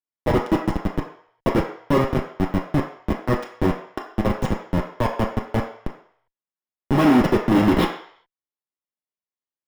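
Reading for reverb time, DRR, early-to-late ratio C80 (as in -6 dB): 0.60 s, -1.5 dB, 10.0 dB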